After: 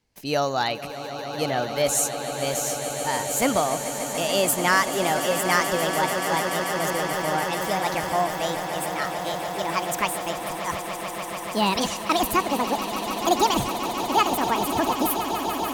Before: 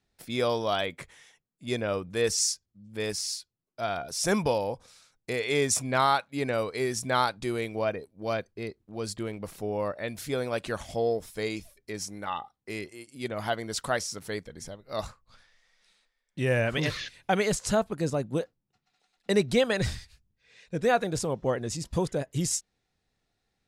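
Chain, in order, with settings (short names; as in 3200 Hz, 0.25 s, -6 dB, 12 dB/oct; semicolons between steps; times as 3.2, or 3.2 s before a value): speed glide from 118% -> 183%; swelling echo 0.145 s, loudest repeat 8, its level -13 dB; gain +3.5 dB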